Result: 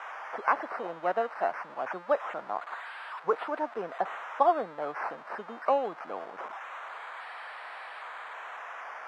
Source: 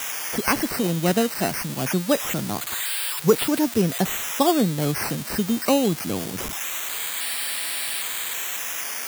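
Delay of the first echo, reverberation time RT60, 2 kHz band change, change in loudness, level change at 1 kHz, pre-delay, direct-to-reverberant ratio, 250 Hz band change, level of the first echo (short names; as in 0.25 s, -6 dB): none, none, -7.5 dB, -10.0 dB, -0.5 dB, none, none, -21.5 dB, none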